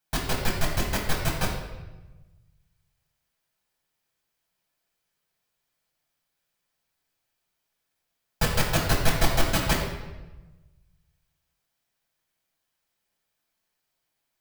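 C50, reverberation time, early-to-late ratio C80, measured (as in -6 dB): 3.5 dB, 1.1 s, 6.0 dB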